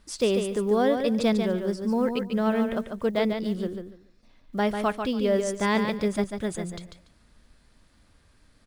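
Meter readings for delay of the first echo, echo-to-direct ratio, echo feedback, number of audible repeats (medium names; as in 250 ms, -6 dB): 144 ms, -6.5 dB, 20%, 3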